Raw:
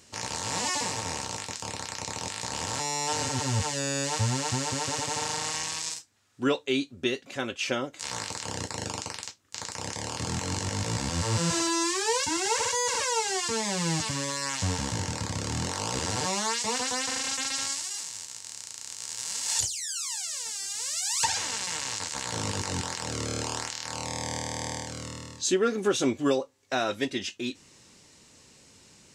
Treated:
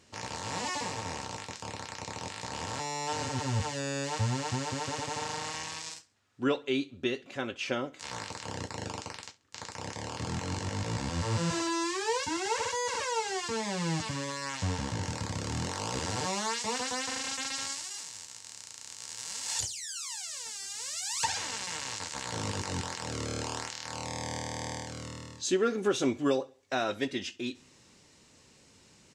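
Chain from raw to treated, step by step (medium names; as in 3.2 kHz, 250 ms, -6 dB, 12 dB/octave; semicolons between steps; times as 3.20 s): treble shelf 6 kHz -12 dB, from 15.03 s -6 dB; feedback delay 67 ms, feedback 40%, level -22 dB; trim -2.5 dB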